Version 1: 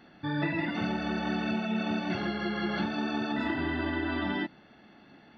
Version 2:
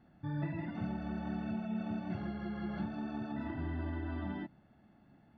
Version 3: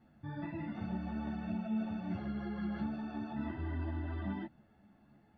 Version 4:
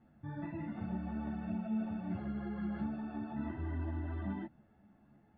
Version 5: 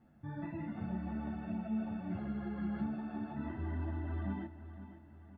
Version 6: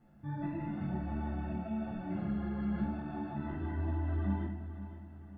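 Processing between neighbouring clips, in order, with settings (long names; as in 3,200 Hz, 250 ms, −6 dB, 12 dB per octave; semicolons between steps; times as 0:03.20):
drawn EQ curve 110 Hz 0 dB, 450 Hz −15 dB, 640 Hz −10 dB, 3,900 Hz −22 dB; level +1 dB
string-ensemble chorus; level +2 dB
high-frequency loss of the air 310 metres
repeating echo 516 ms, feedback 46%, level −13 dB
rectangular room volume 140 cubic metres, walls mixed, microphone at 0.8 metres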